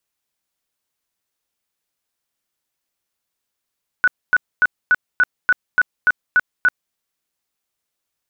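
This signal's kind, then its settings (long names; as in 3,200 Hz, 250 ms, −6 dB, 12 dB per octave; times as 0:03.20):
tone bursts 1,480 Hz, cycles 53, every 0.29 s, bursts 10, −9.5 dBFS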